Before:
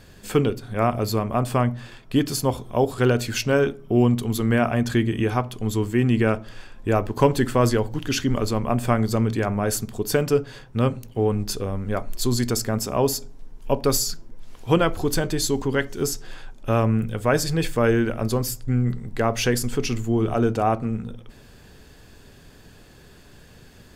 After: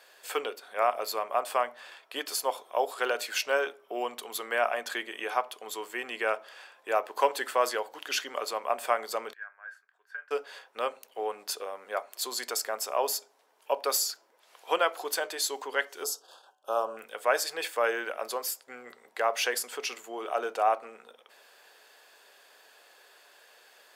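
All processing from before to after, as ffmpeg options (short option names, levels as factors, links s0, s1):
-filter_complex "[0:a]asettb=1/sr,asplit=3[s0][s1][s2];[s0]atrim=end=9.334[s3];[s1]atrim=start=9.33:end=10.31,asetpts=PTS-STARTPTS,afade=t=in:d=0.004:c=qsin,afade=t=out:st=0.976:d=0.004:c=qsin,bandpass=f=1600:t=q:w=17,asplit=2[s4][s5];[s5]adelay=27,volume=0.237[s6];[s4][s6]amix=inputs=2:normalize=0,atrim=end_sample=43218[s7];[s2]atrim=start=10.306[s8];[s3][s7]acrossfade=d=0.004:c1=hsin:c2=qsin[s9];[s9][s8]acrossfade=d=0.004:c1=qsin:c2=hsin,asettb=1/sr,asplit=3[s10][s11][s12];[s10]atrim=end=16.044[s13];[s11]atrim=start=16.04:end=16.97,asetpts=PTS-STARTPTS,afade=t=in:d=0.004:c=qsin,afade=t=out:st=0.926:d=0.004:c=qsin,agate=range=0.0224:threshold=0.0224:ratio=3:release=100:detection=peak,asuperstop=centerf=2100:order=4:qfactor=0.98,bandreject=f=94.38:t=h:w=4,bandreject=f=188.76:t=h:w=4,bandreject=f=283.14:t=h:w=4,bandreject=f=377.52:t=h:w=4,bandreject=f=471.9:t=h:w=4,bandreject=f=566.28:t=h:w=4,bandreject=f=660.66:t=h:w=4,bandreject=f=755.04:t=h:w=4,bandreject=f=849.42:t=h:w=4,bandreject=f=943.8:t=h:w=4,bandreject=f=1038.18:t=h:w=4,bandreject=f=1132.56:t=h:w=4,bandreject=f=1226.94:t=h:w=4,bandreject=f=1321.32:t=h:w=4,bandreject=f=1415.7:t=h:w=4,bandreject=f=1510.08:t=h:w=4,bandreject=f=1604.46:t=h:w=4,bandreject=f=1698.84:t=h:w=4,bandreject=f=1793.22:t=h:w=4,bandreject=f=1887.6:t=h:w=4,bandreject=f=1981.98:t=h:w=4,bandreject=f=2076.36:t=h:w=4,bandreject=f=2170.74:t=h:w=4,bandreject=f=2265.12:t=h:w=4,bandreject=f=2359.5:t=h:w=4,bandreject=f=2453.88:t=h:w=4,bandreject=f=2548.26:t=h:w=4,bandreject=f=2642.64:t=h:w=4,bandreject=f=2737.02:t=h:w=4,bandreject=f=2831.4:t=h:w=4,bandreject=f=2925.78:t=h:w=4,bandreject=f=3020.16:t=h:w=4,bandreject=f=3114.54:t=h:w=4,bandreject=f=3208.92:t=h:w=4[s14];[s12]atrim=start=16.966[s15];[s13][s14]acrossfade=d=0.004:c1=hsin:c2=qsin[s16];[s16][s15]acrossfade=d=0.004:c1=qsin:c2=hsin,highpass=f=560:w=0.5412,highpass=f=560:w=1.3066,equalizer=f=6400:t=o:w=0.9:g=-3.5,volume=0.794"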